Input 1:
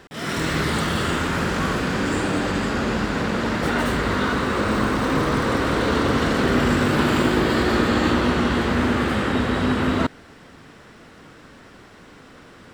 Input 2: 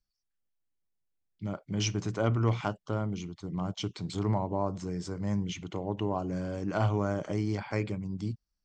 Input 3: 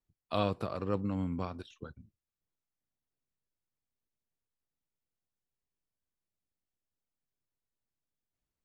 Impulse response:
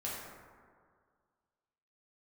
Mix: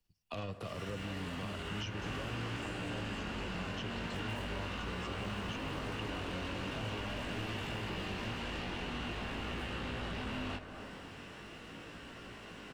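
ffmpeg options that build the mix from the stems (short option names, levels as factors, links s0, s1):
-filter_complex "[0:a]aeval=exprs='0.473*sin(PI/2*3.98*val(0)/0.473)':c=same,flanger=delay=17:depth=4.9:speed=0.43,adelay=500,volume=0.112,asplit=2[s0][s1];[s1]volume=0.316[s2];[1:a]volume=1.12[s3];[2:a]asoftclip=type=tanh:threshold=0.0398,volume=1.26,asplit=3[s4][s5][s6];[s5]volume=0.15[s7];[s6]apad=whole_len=583739[s8];[s0][s8]sidechaincompress=threshold=0.00316:ratio=8:attack=44:release=334[s9];[s3][s4]amix=inputs=2:normalize=0,tremolo=f=18:d=0.32,alimiter=limit=0.075:level=0:latency=1,volume=1[s10];[3:a]atrim=start_sample=2205[s11];[s2][s7]amix=inputs=2:normalize=0[s12];[s12][s11]afir=irnorm=-1:irlink=0[s13];[s9][s10][s13]amix=inputs=3:normalize=0,equalizer=f=2800:w=5.7:g=11,bandreject=f=1300:w=25,acrossover=split=150|370|4100[s14][s15][s16][s17];[s14]acompressor=threshold=0.00708:ratio=4[s18];[s15]acompressor=threshold=0.00316:ratio=4[s19];[s16]acompressor=threshold=0.00708:ratio=4[s20];[s17]acompressor=threshold=0.00112:ratio=4[s21];[s18][s19][s20][s21]amix=inputs=4:normalize=0"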